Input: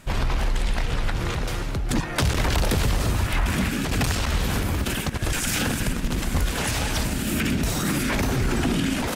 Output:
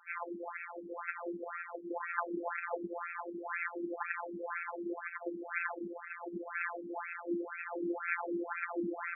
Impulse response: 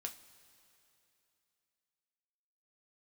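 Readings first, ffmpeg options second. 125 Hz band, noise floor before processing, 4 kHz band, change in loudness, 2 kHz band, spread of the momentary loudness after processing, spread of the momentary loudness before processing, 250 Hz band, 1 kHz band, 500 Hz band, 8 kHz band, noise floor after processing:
-37.0 dB, -29 dBFS, under -40 dB, -14.5 dB, -9.0 dB, 6 LU, 4 LU, -14.5 dB, -9.0 dB, -9.0 dB, under -40 dB, -48 dBFS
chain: -af "afftfilt=real='hypot(re,im)*cos(PI*b)':imag='0':win_size=1024:overlap=0.75,afftfilt=real='re*between(b*sr/1024,300*pow(1900/300,0.5+0.5*sin(2*PI*2*pts/sr))/1.41,300*pow(1900/300,0.5+0.5*sin(2*PI*2*pts/sr))*1.41)':imag='im*between(b*sr/1024,300*pow(1900/300,0.5+0.5*sin(2*PI*2*pts/sr))/1.41,300*pow(1900/300,0.5+0.5*sin(2*PI*2*pts/sr))*1.41)':win_size=1024:overlap=0.75"

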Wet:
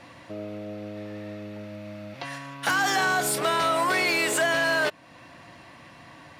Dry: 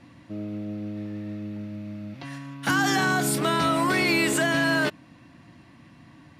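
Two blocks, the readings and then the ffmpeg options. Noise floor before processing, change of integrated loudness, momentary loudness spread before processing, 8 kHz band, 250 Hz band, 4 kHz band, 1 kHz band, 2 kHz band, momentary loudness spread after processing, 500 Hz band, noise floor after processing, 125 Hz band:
-52 dBFS, +0.5 dB, 16 LU, +0.5 dB, -8.5 dB, 0.0 dB, +1.0 dB, +0.5 dB, 17 LU, +1.0 dB, -49 dBFS, -8.5 dB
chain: -af "acompressor=threshold=-41dB:ratio=1.5,asoftclip=type=hard:threshold=-25dB,lowshelf=f=370:t=q:w=1.5:g=-9,volume=8dB"

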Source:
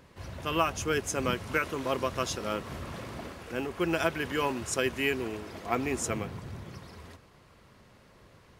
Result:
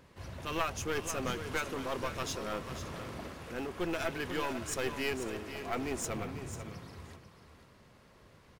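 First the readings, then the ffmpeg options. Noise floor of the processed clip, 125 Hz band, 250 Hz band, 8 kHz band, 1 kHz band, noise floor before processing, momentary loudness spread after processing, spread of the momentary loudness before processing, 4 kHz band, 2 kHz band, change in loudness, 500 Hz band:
-60 dBFS, -4.5 dB, -5.0 dB, -4.0 dB, -5.5 dB, -58 dBFS, 10 LU, 14 LU, -4.5 dB, -5.5 dB, -5.5 dB, -5.5 dB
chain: -filter_complex "[0:a]asplit=2[a][b];[b]aecho=0:1:557:0.0841[c];[a][c]amix=inputs=2:normalize=0,aeval=exprs='clip(val(0),-1,0.0237)':c=same,asplit=2[d][e];[e]aecho=0:1:493:0.316[f];[d][f]amix=inputs=2:normalize=0,volume=-3dB"

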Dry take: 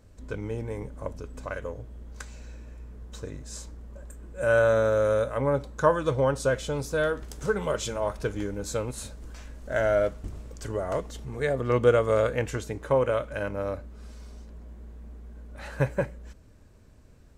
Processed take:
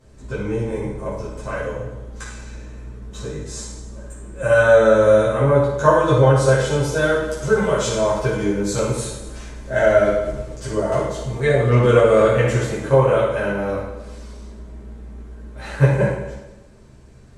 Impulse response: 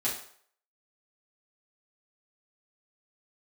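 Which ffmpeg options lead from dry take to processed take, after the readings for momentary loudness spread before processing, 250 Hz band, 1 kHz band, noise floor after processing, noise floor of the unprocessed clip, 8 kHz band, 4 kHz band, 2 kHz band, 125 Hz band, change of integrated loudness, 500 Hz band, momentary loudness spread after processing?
22 LU, +10.5 dB, +9.0 dB, -44 dBFS, -52 dBFS, +9.0 dB, +9.0 dB, +9.0 dB, +12.5 dB, +9.5 dB, +9.0 dB, 21 LU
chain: -filter_complex "[1:a]atrim=start_sample=2205,asetrate=23373,aresample=44100[a];[0:a][a]afir=irnorm=-1:irlink=0,volume=-2dB"

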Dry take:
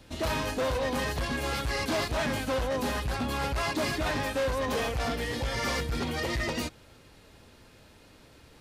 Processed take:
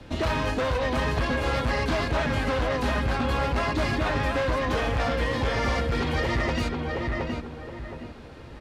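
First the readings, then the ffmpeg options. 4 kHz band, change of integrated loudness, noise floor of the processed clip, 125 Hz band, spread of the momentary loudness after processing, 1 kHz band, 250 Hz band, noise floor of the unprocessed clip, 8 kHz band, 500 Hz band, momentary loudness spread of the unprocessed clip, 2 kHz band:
+1.0 dB, +4.0 dB, -43 dBFS, +7.0 dB, 12 LU, +5.0 dB, +4.5 dB, -55 dBFS, -4.5 dB, +4.0 dB, 2 LU, +4.0 dB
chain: -filter_complex "[0:a]aemphasis=mode=reproduction:type=75fm,asplit=2[a][b];[b]adelay=719,lowpass=f=2.4k:p=1,volume=-5.5dB,asplit=2[c][d];[d]adelay=719,lowpass=f=2.4k:p=1,volume=0.3,asplit=2[e][f];[f]adelay=719,lowpass=f=2.4k:p=1,volume=0.3,asplit=2[g][h];[h]adelay=719,lowpass=f=2.4k:p=1,volume=0.3[i];[a][c][e][g][i]amix=inputs=5:normalize=0,acrossover=split=120|1100[j][k][l];[j]acompressor=threshold=-35dB:ratio=4[m];[k]acompressor=threshold=-36dB:ratio=4[n];[l]acompressor=threshold=-38dB:ratio=4[o];[m][n][o]amix=inputs=3:normalize=0,volume=8.5dB"

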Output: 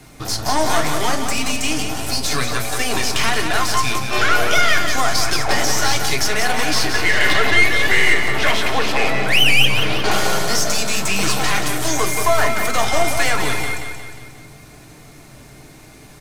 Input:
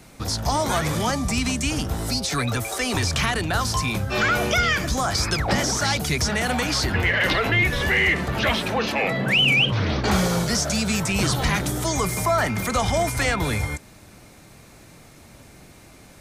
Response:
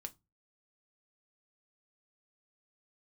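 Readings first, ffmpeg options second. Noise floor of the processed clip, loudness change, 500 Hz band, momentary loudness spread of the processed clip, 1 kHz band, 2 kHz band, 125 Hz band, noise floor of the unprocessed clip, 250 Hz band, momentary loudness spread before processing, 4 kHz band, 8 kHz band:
-42 dBFS, +4.0 dB, +3.5 dB, 7 LU, +5.0 dB, +5.0 dB, -3.5 dB, -48 dBFS, -1.0 dB, 5 LU, +5.0 dB, +5.5 dB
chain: -filter_complex "[0:a]acrossover=split=340[a][b];[a]acompressor=threshold=-35dB:ratio=6[c];[c][b]amix=inputs=2:normalize=0,acrusher=bits=10:mix=0:aa=0.000001,aeval=exprs='0.376*(cos(1*acos(clip(val(0)/0.376,-1,1)))-cos(1*PI/2))+0.0335*(cos(8*acos(clip(val(0)/0.376,-1,1)))-cos(8*PI/2))':c=same,aecho=1:1:179|358|537|716|895|1074:0.447|0.232|0.121|0.0628|0.0327|0.017[d];[1:a]atrim=start_sample=2205,asetrate=32634,aresample=44100[e];[d][e]afir=irnorm=-1:irlink=0,volume=6dB"

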